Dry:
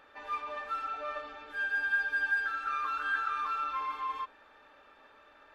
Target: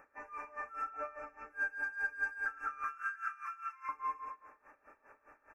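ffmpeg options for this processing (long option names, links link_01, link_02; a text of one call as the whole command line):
ffmpeg -i in.wav -filter_complex "[0:a]asettb=1/sr,asplit=3[link_01][link_02][link_03];[link_01]atrim=end=2.844[link_04];[link_02]atrim=start=2.84:end=3.89,asetpts=PTS-STARTPTS,afade=type=in:duration=0.004:curve=qsin,afade=type=out:start_time=1.046:duration=0.004:curve=qsin,highpass=frequency=1400:width=0.5412,highpass=frequency=1400:width=1.3066[link_05];[link_03]atrim=start=3.886[link_06];[link_04][link_05]acrossfade=duration=0.004:curve1=hsin:curve2=qsin[link_07];[link_07][link_06]acrossfade=duration=0.004:curve1=qsin:curve2=hsin,asoftclip=type=tanh:threshold=-24.5dB,asuperstop=centerf=3700:order=8:qfactor=1.2,aecho=1:1:109|218|327|436:0.398|0.155|0.0606|0.0236,aeval=exprs='val(0)*pow(10,-19*(0.5-0.5*cos(2*PI*4.9*n/s))/20)':channel_layout=same,volume=1dB" out.wav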